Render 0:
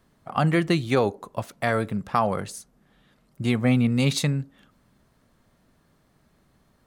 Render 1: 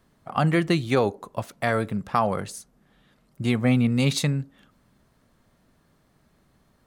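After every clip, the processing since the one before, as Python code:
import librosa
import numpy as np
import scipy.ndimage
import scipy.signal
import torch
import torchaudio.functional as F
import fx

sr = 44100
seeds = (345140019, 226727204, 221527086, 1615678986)

y = x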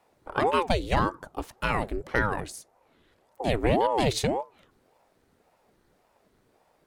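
y = fx.ring_lfo(x, sr, carrier_hz=460.0, swing_pct=65, hz=1.8)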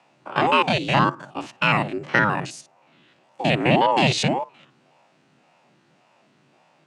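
y = fx.spec_steps(x, sr, hold_ms=50)
y = fx.cabinet(y, sr, low_hz=140.0, low_slope=24, high_hz=7600.0, hz=(140.0, 450.0, 2700.0), db=(8, -10, 9))
y = F.gain(torch.from_numpy(y), 8.5).numpy()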